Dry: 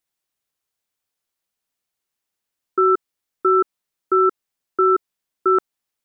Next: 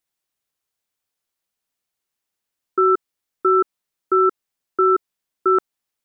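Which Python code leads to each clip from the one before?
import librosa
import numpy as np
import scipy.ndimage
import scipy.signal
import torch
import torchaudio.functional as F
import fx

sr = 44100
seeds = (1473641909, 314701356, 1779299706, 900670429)

y = x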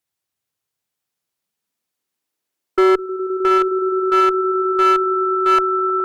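y = fx.filter_sweep_highpass(x, sr, from_hz=84.0, to_hz=680.0, start_s=0.17, end_s=3.89, q=2.2)
y = fx.echo_swell(y, sr, ms=104, loudest=8, wet_db=-14.5)
y = fx.clip_asym(y, sr, top_db=-11.5, bottom_db=-6.5)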